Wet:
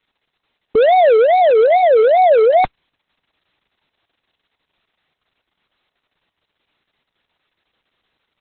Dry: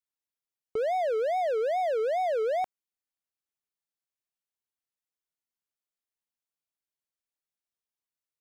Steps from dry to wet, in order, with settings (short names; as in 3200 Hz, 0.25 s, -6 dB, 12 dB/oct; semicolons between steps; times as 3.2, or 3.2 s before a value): downsampling 22050 Hz; maximiser +33.5 dB; gain -4.5 dB; Opus 6 kbps 48000 Hz